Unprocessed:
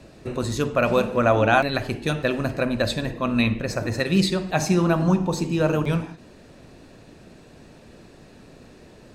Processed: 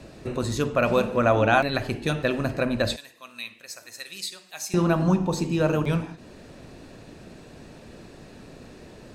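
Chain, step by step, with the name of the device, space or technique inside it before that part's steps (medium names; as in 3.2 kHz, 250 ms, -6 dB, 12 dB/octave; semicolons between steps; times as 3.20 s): parallel compression (in parallel at -4 dB: compression, threshold -39 dBFS, peak gain reduction 23.5 dB); 2.96–4.74 s: on the sum: differentiator; trim -2 dB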